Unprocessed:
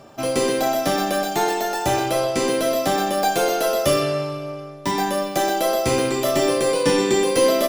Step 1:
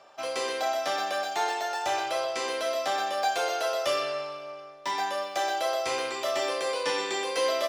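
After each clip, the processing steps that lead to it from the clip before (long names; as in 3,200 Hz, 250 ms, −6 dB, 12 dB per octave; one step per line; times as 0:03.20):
three-way crossover with the lows and the highs turned down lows −24 dB, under 530 Hz, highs −15 dB, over 6,800 Hz
level −4.5 dB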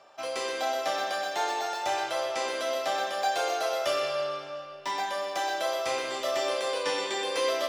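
comb and all-pass reverb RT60 2.7 s, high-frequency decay 0.8×, pre-delay 60 ms, DRR 5.5 dB
level −1.5 dB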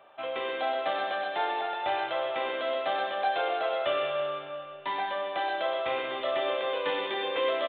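downsampling to 8,000 Hz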